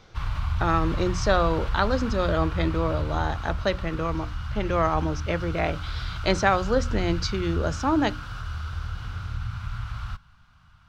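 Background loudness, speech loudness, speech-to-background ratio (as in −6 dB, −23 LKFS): −32.0 LKFS, −26.5 LKFS, 5.5 dB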